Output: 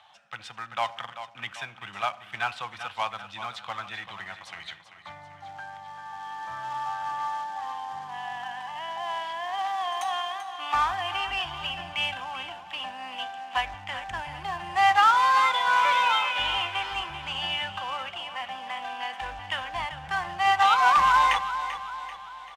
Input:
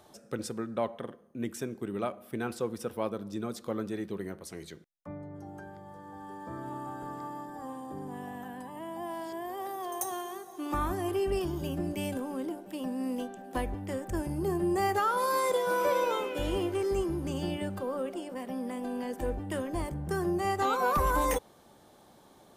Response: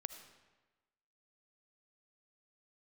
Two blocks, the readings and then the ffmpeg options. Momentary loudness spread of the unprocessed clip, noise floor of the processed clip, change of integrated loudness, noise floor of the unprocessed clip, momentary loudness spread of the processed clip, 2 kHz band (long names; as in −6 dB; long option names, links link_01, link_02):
15 LU, −49 dBFS, +6.0 dB, −58 dBFS, 19 LU, +12.5 dB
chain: -filter_complex "[0:a]firequalizer=gain_entry='entry(110,0);entry(240,-24);entry(420,-28);entry(760,5);entry(1200,4);entry(3000,13);entry(5000,-5)':delay=0.05:min_phase=1,acrossover=split=460[link_01][link_02];[link_01]volume=32dB,asoftclip=hard,volume=-32dB[link_03];[link_02]acrusher=bits=3:mode=log:mix=0:aa=0.000001[link_04];[link_03][link_04]amix=inputs=2:normalize=0,aecho=1:1:389|778|1167|1556|1945:0.266|0.13|0.0639|0.0313|0.0153,dynaudnorm=framelen=360:gausssize=3:maxgain=5dB,acrossover=split=180 6900:gain=0.178 1 0.0708[link_05][link_06][link_07];[link_05][link_06][link_07]amix=inputs=3:normalize=0" -ar 48000 -c:a libvorbis -b:a 128k